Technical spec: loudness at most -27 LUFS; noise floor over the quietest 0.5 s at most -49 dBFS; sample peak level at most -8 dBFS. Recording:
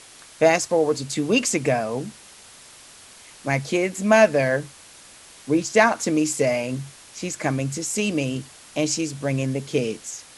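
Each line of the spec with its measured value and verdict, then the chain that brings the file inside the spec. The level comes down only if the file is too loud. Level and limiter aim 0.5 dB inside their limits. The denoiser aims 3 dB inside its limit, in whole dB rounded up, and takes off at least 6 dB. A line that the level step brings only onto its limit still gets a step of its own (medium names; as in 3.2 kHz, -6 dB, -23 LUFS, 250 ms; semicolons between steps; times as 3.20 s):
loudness -22.5 LUFS: fail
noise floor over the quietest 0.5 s -47 dBFS: fail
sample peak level -3.0 dBFS: fail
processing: trim -5 dB; peak limiter -8.5 dBFS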